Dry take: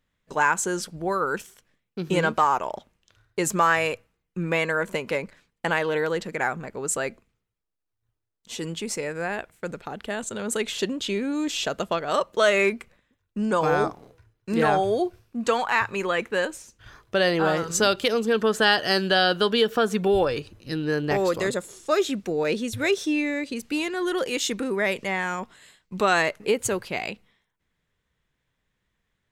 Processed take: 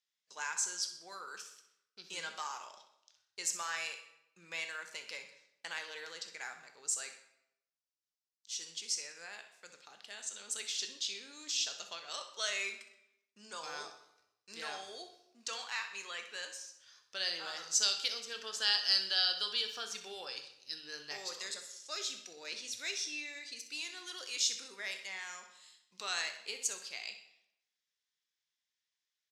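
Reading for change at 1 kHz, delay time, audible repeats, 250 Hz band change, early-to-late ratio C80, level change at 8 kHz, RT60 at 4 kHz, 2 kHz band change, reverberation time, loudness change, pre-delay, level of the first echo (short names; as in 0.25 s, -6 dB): -21.0 dB, 63 ms, 1, -33.0 dB, 12.0 dB, -4.0 dB, 0.60 s, -15.0 dB, 0.80 s, -12.0 dB, 13 ms, -12.5 dB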